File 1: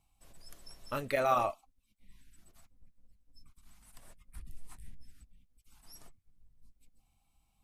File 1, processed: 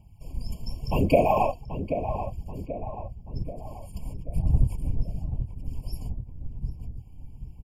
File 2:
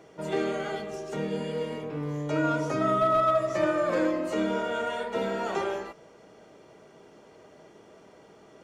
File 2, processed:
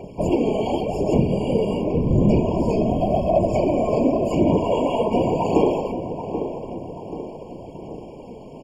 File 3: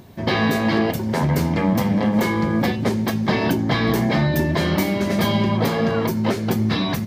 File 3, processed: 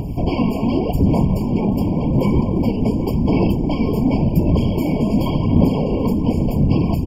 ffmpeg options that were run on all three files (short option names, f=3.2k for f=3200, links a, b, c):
-filter_complex "[0:a]lowshelf=f=320:g=11,acompressor=threshold=-25dB:ratio=6,afftfilt=real='hypot(re,im)*cos(2*PI*random(0))':imag='hypot(re,im)*sin(2*PI*random(1))':win_size=512:overlap=0.75,acontrast=84,aphaser=in_gain=1:out_gain=1:delay=4.7:decay=0.43:speed=0.89:type=sinusoidal,asplit=2[a][b];[b]adelay=783,lowpass=f=1.5k:p=1,volume=-8.5dB,asplit=2[c][d];[d]adelay=783,lowpass=f=1.5k:p=1,volume=0.53,asplit=2[e][f];[f]adelay=783,lowpass=f=1.5k:p=1,volume=0.53,asplit=2[g][h];[h]adelay=783,lowpass=f=1.5k:p=1,volume=0.53,asplit=2[i][j];[j]adelay=783,lowpass=f=1.5k:p=1,volume=0.53,asplit=2[k][l];[l]adelay=783,lowpass=f=1.5k:p=1,volume=0.53[m];[c][e][g][i][k][m]amix=inputs=6:normalize=0[n];[a][n]amix=inputs=2:normalize=0,afftfilt=real='re*eq(mod(floor(b*sr/1024/1100),2),0)':imag='im*eq(mod(floor(b*sr/1024/1100),2),0)':win_size=1024:overlap=0.75,volume=6.5dB"